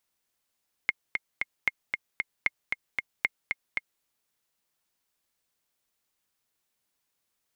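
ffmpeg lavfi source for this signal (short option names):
-f lavfi -i "aevalsrc='pow(10,(-10-4.5*gte(mod(t,3*60/229),60/229))/20)*sin(2*PI*2140*mod(t,60/229))*exp(-6.91*mod(t,60/229)/0.03)':d=3.14:s=44100"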